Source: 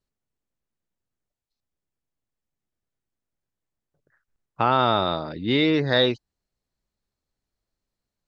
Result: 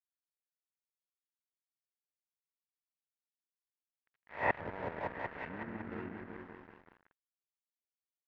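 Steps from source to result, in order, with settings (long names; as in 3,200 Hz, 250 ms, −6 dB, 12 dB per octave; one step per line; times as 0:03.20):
peak hold with a rise ahead of every peak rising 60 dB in 0.51 s
treble cut that deepens with the level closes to 700 Hz, closed at −19.5 dBFS
gate with flip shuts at −25 dBFS, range −26 dB
spectral tilt +1.5 dB per octave
on a send: echo whose low-pass opens from repeat to repeat 187 ms, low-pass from 400 Hz, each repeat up 1 octave, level 0 dB
on the sum: pitch shifter −5.5 semitones
dead-zone distortion −54.5 dBFS
low-pass filter 3,200 Hz 12 dB per octave
parametric band 1,800 Hz +14.5 dB 1.1 octaves
level +5.5 dB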